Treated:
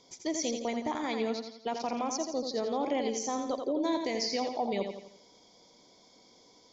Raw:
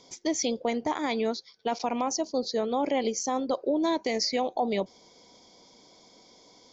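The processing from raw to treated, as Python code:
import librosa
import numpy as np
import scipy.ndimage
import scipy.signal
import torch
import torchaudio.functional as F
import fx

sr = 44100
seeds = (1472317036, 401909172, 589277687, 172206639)

y = fx.echo_feedback(x, sr, ms=85, feedback_pct=45, wet_db=-6)
y = F.gain(torch.from_numpy(y), -5.0).numpy()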